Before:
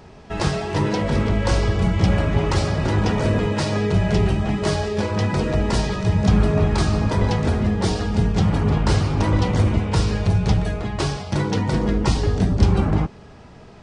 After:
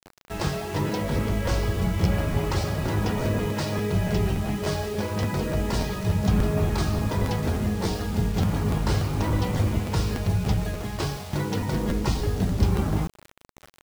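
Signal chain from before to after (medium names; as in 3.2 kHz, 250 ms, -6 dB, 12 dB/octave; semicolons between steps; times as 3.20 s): word length cut 6-bit, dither none; crackling interface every 0.29 s, samples 512, repeat, from 0.87 s; trim -5.5 dB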